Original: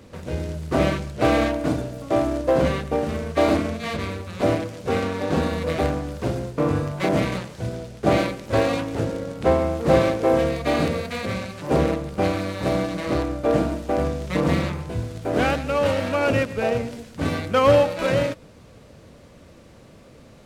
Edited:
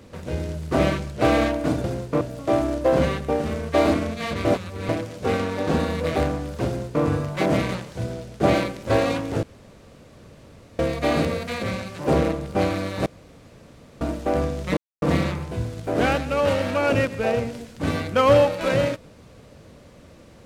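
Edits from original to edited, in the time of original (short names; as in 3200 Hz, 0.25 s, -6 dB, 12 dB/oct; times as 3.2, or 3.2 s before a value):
4.08–4.52 reverse
6.29–6.66 copy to 1.84
9.06–10.42 room tone
12.69–13.64 room tone
14.4 insert silence 0.25 s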